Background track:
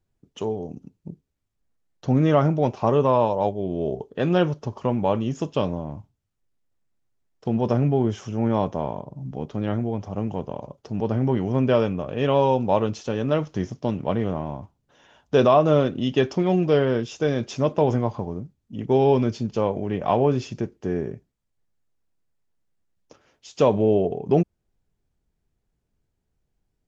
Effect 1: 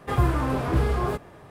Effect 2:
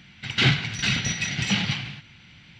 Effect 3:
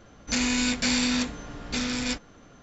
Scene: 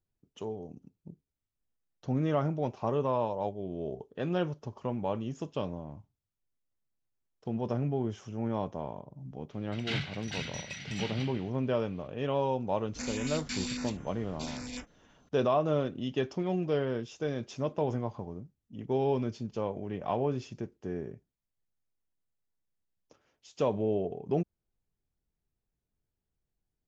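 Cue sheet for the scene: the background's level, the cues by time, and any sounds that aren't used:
background track −10.5 dB
0:09.49: mix in 2 −14.5 dB
0:12.67: mix in 3 −11 dB + notch on a step sequencer 10 Hz 580–4,300 Hz
not used: 1

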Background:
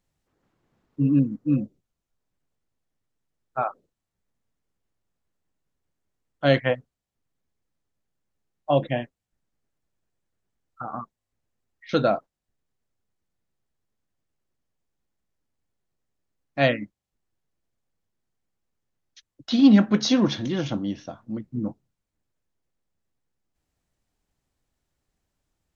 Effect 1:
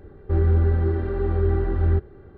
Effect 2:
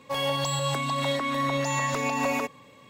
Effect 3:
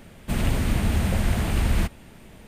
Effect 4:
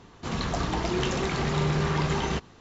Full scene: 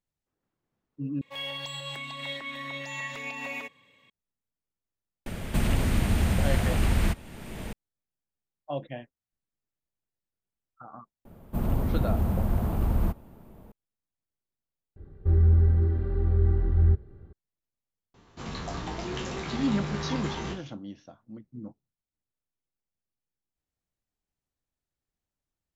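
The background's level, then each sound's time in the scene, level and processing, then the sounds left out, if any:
background −12.5 dB
0:01.21: overwrite with 2 −14 dB + flat-topped bell 2,600 Hz +10.5 dB 1.3 octaves
0:05.26: mix in 3 −2 dB + multiband upward and downward compressor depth 70%
0:11.25: mix in 3 −3 dB + flat-topped bell 4,000 Hz −15.5 dB 2.9 octaves
0:14.96: overwrite with 1 −11.5 dB + bass and treble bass +11 dB, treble +6 dB
0:18.14: mix in 4 −8 dB + peak hold with a decay on every bin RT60 0.31 s

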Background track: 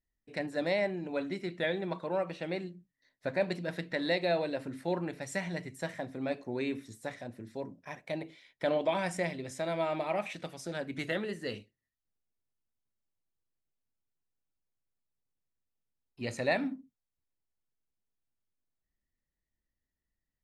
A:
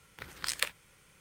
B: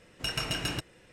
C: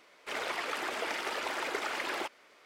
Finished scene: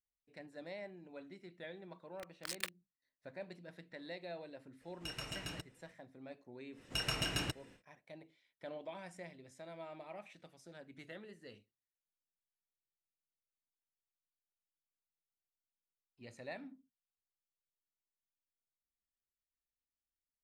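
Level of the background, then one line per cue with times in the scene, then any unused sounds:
background track −17 dB
0:02.01: mix in A −9.5 dB + bit reduction 6 bits
0:04.81: mix in B −12.5 dB
0:06.71: mix in B −4.5 dB, fades 0.10 s
not used: C

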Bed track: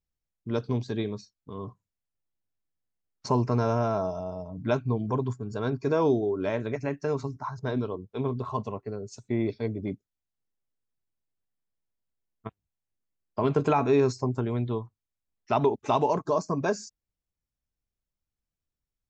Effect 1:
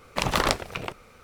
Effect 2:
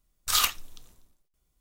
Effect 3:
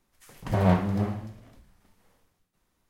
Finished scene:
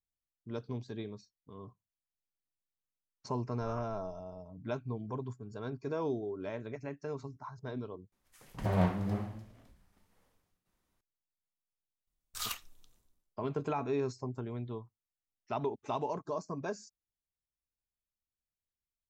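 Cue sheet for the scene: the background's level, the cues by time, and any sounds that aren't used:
bed track −11 dB
0:03.34: mix in 2 −10 dB + low-pass filter 1,000 Hz 24 dB per octave
0:08.12: overwrite with 3 −7 dB
0:12.07: mix in 2 −14.5 dB
not used: 1

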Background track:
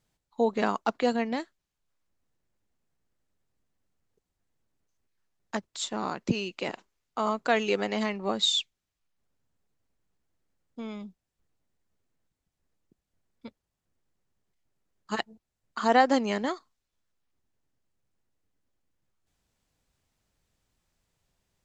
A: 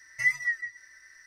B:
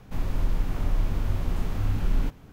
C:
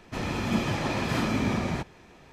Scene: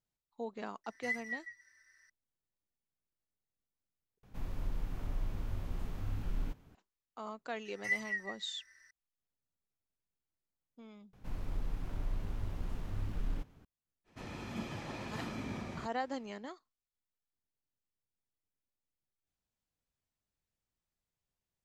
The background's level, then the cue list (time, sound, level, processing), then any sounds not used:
background track −16 dB
0:00.84: mix in A −12.5 dB
0:04.23: overwrite with B −12 dB
0:07.65: mix in A −9 dB
0:11.13: overwrite with B −12 dB + highs frequency-modulated by the lows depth 0.88 ms
0:14.04: mix in C −14.5 dB, fades 0.05 s

